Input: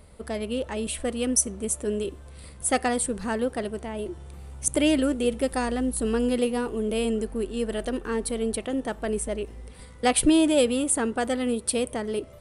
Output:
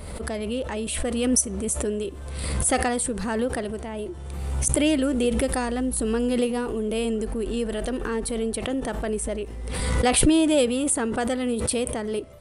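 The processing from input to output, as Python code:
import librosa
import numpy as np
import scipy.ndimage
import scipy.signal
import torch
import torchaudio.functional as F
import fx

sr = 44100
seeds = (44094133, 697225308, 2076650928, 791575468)

y = fx.pre_swell(x, sr, db_per_s=32.0)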